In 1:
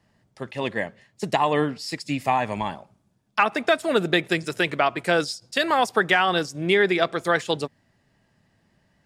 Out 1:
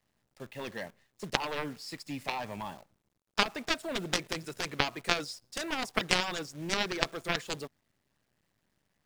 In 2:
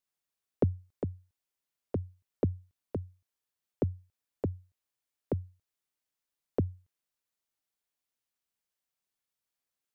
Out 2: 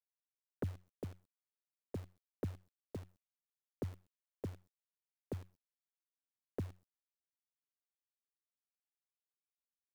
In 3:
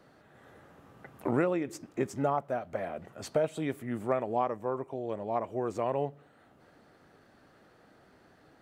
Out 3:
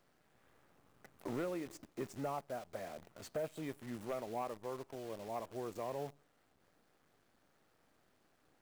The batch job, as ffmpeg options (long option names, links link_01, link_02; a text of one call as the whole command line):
ffmpeg -i in.wav -af "acrusher=bits=8:dc=4:mix=0:aa=0.000001,aeval=exprs='0.596*(cos(1*acos(clip(val(0)/0.596,-1,1)))-cos(1*PI/2))+0.237*(cos(3*acos(clip(val(0)/0.596,-1,1)))-cos(3*PI/2))+0.00841*(cos(7*acos(clip(val(0)/0.596,-1,1)))-cos(7*PI/2))':channel_layout=same,volume=1dB" out.wav